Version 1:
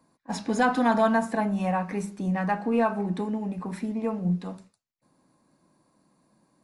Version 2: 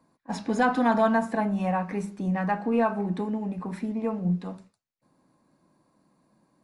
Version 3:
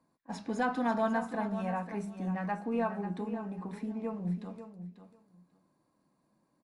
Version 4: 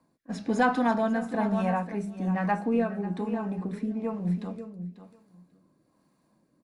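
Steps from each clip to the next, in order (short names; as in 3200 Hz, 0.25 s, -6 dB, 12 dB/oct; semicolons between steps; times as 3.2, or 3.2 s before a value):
high shelf 4600 Hz -6.5 dB
feedback echo 0.542 s, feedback 15%, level -11 dB; gain -8 dB
rotary speaker horn 1.1 Hz; gain +8 dB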